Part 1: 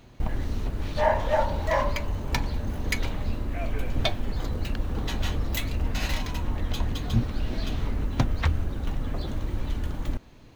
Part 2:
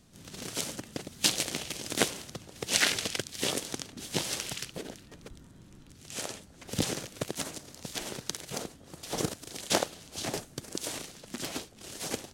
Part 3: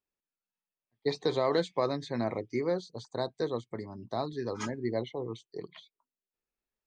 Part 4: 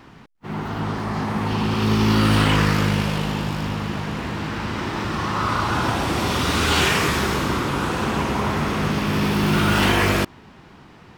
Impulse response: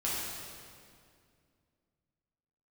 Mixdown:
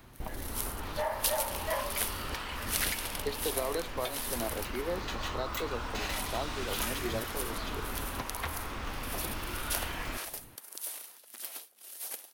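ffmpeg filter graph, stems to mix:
-filter_complex "[0:a]volume=-4dB[a];[1:a]highpass=680,aexciter=amount=6.3:drive=7:freq=9.9k,volume=-9dB[b];[2:a]adelay=2200,volume=-2dB[c];[3:a]highpass=730,acompressor=threshold=-27dB:ratio=3,volume=-12dB[d];[a][c]amix=inputs=2:normalize=0,acrossover=split=300|3000[e][f][g];[e]acompressor=threshold=-37dB:ratio=6[h];[h][f][g]amix=inputs=3:normalize=0,alimiter=limit=-23dB:level=0:latency=1:release=349,volume=0dB[i];[b][d][i]amix=inputs=3:normalize=0"

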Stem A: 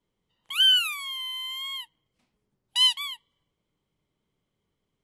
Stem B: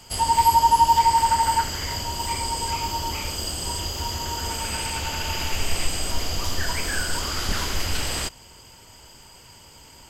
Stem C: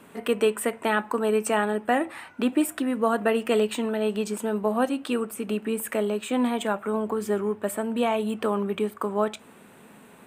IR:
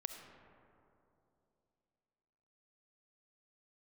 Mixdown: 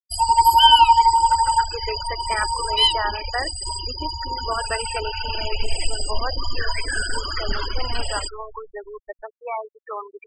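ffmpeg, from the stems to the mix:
-filter_complex "[0:a]agate=range=-47dB:threshold=-28dB:ratio=16:detection=peak,volume=0dB,asplit=2[a][b];[b]volume=-5.5dB[c];[1:a]volume=0.5dB,asplit=2[d][e];[e]volume=-4.5dB[f];[2:a]equalizer=f=250:t=o:w=1:g=-8,equalizer=f=1k:t=o:w=1:g=6,equalizer=f=2k:t=o:w=1:g=9,equalizer=f=4k:t=o:w=1:g=-5,equalizer=f=8k:t=o:w=1:g=5,adelay=1450,volume=-6dB[g];[3:a]atrim=start_sample=2205[h];[c][f]amix=inputs=2:normalize=0[i];[i][h]afir=irnorm=-1:irlink=0[j];[a][d][g][j]amix=inputs=4:normalize=0,equalizer=f=130:w=1.2:g=-14.5,afftfilt=real='re*gte(hypot(re,im),0.1)':imag='im*gte(hypot(re,im),0.1)':win_size=1024:overlap=0.75"

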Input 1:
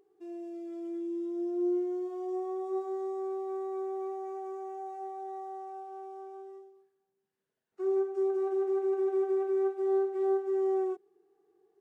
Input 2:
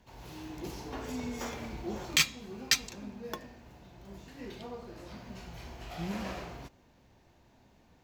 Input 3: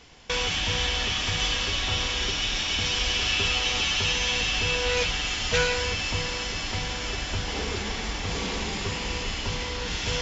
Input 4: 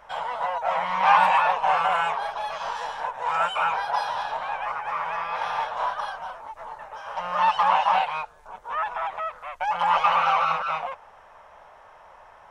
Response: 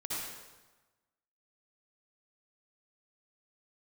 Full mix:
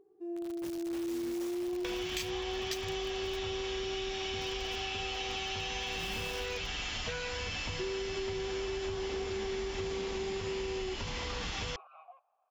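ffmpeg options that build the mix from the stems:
-filter_complex "[0:a]tiltshelf=f=1.2k:g=8.5,alimiter=limit=-23.5dB:level=0:latency=1,volume=-3.5dB[a];[1:a]acrusher=bits=5:mix=0:aa=0.000001,adynamicequalizer=threshold=0.00501:dfrequency=2000:dqfactor=0.7:tfrequency=2000:tqfactor=0.7:attack=5:release=100:ratio=0.375:range=2.5:mode=boostabove:tftype=highshelf,volume=-9.5dB[b];[2:a]acompressor=threshold=-30dB:ratio=6,asoftclip=type=tanh:threshold=-16.5dB,acrossover=split=4400[c][d];[d]acompressor=threshold=-42dB:ratio=4:attack=1:release=60[e];[c][e]amix=inputs=2:normalize=0,adelay=1550,volume=-1dB[f];[3:a]asplit=3[g][h][i];[g]bandpass=f=730:t=q:w=8,volume=0dB[j];[h]bandpass=f=1.09k:t=q:w=8,volume=-6dB[k];[i]bandpass=f=2.44k:t=q:w=8,volume=-9dB[l];[j][k][l]amix=inputs=3:normalize=0,adelay=1250,volume=-19dB[m];[a][b][f][m]amix=inputs=4:normalize=0,acompressor=threshold=-33dB:ratio=6"

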